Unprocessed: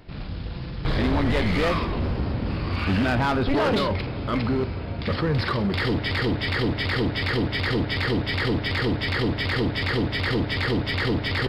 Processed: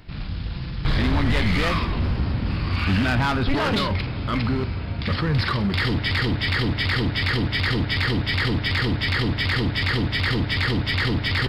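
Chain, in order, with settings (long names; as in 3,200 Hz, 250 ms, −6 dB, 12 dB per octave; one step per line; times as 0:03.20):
parametric band 490 Hz −8.5 dB 1.8 octaves
level +4 dB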